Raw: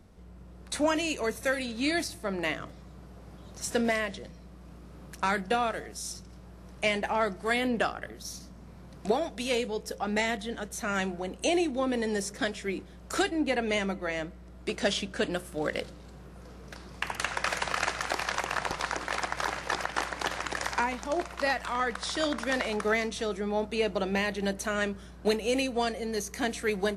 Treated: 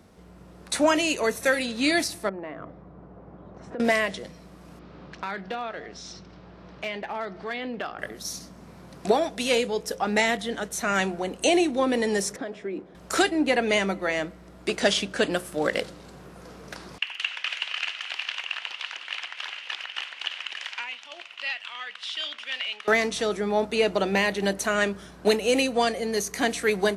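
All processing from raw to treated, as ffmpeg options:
-filter_complex "[0:a]asettb=1/sr,asplit=3[s0][s1][s2];[s0]atrim=end=2.294[s3];[s1]atrim=start=2.29:end=3.8,asetpts=PTS-STARTPTS,afade=t=in:d=0.004:c=qsin,afade=t=out:st=1.506:d=0.004:c=qsin,lowpass=1100,acompressor=threshold=0.0126:ratio=5:attack=3.2:release=140:knee=1:detection=peak[s4];[s2]atrim=start=3.796[s5];[s3][s4]acrossfade=d=0.004:c1=hsin:c2=qsin[s6];[s6][s5]acrossfade=d=0.004:c1=qsin:c2=hsin,asettb=1/sr,asplit=3[s7][s8][s9];[s7]atrim=end=4.794[s10];[s8]atrim=start=4.79:end=7.99,asetpts=PTS-STARTPTS,afade=t=in:d=0.004:c=qsin,afade=t=out:st=3.196:d=0.004:c=qsin,lowpass=f=4600:w=0.5412,lowpass=f=4600:w=1.3066,acompressor=threshold=0.00794:ratio=2:attack=3.2:release=140:knee=1:detection=peak,aeval=exprs='clip(val(0),-1,0.0237)':c=same[s11];[s9]atrim=start=7.986[s12];[s10][s11]acrossfade=d=0.004:c1=hsin:c2=qsin[s13];[s13][s12]acrossfade=d=0.004:c1=qsin:c2=hsin,asettb=1/sr,asplit=3[s14][s15][s16];[s14]atrim=end=12.364[s17];[s15]atrim=start=12.36:end=12.95,asetpts=PTS-STARTPTS,afade=t=in:d=0.004:c=qsin,afade=t=out:st=0.586:d=0.004:c=qsin,acompressor=threshold=0.0282:ratio=4:attack=3.2:release=140:knee=1:detection=peak,bandpass=f=430:t=q:w=0.64[s18];[s16]atrim=start=12.946[s19];[s17][s18]acrossfade=d=0.004:c1=hsin:c2=qsin[s20];[s20][s19]acrossfade=d=0.004:c1=qsin:c2=hsin,asettb=1/sr,asplit=3[s21][s22][s23];[s21]atrim=end=16.984[s24];[s22]atrim=start=16.98:end=22.88,asetpts=PTS-STARTPTS,afade=t=in:d=0.004:c=qsin,afade=t=out:st=5.896:d=0.004:c=qsin,acontrast=36,bandpass=f=2900:t=q:w=5.9[s25];[s23]atrim=start=22.876[s26];[s24][s25]acrossfade=d=0.004:c1=hsin:c2=qsin[s27];[s27][s26]acrossfade=d=0.004:c1=qsin:c2=hsin,highpass=f=200:p=1,acontrast=64"

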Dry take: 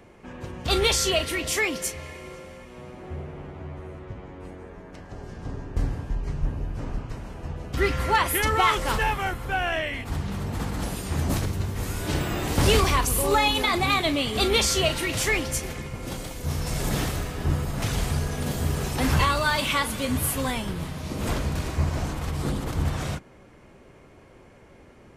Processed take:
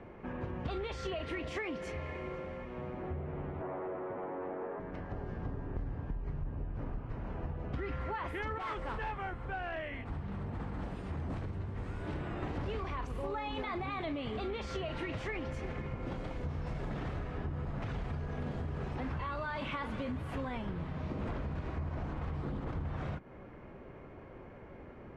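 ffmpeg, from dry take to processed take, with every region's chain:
-filter_complex "[0:a]asettb=1/sr,asplit=3[s0][s1][s2];[s0]atrim=end=3.614[s3];[s1]atrim=start=3.61:end=4.8,asetpts=PTS-STARTPTS,afade=t=in:d=0.004:c=qsin,afade=t=out:st=1.186:d=0.004:c=qsin,highpass=610,lowpass=2000,tiltshelf=f=810:g=7,aeval=exprs='0.02*sin(PI/2*1.78*val(0)/0.02)':c=same[s4];[s2]atrim=start=4.796[s5];[s3][s4]acrossfade=d=0.004:c1=hsin:c2=qsin[s6];[s6][s5]acrossfade=d=0.004:c1=qsin:c2=hsin,asettb=1/sr,asplit=3[s7][s8][s9];[s7]atrim=end=8.584[s10];[s8]atrim=start=8.58:end=12.43,asetpts=PTS-STARTPTS,afade=t=in:d=0.004:c=qsin,afade=t=out:st=3.846:d=0.004:c=qsin,agate=range=0.398:threshold=0.0708:ratio=16:release=100:detection=peak,asoftclip=type=hard:threshold=0.0355,equalizer=f=8400:t=o:w=0.21:g=7.5[s11];[s9]atrim=start=12.426[s12];[s10][s11]acrossfade=d=0.004:c1=hsin:c2=qsin[s13];[s13][s12]acrossfade=d=0.004:c1=qsin:c2=hsin,alimiter=limit=0.112:level=0:latency=1:release=30,lowpass=1900,acompressor=threshold=0.0158:ratio=6,volume=1.12"

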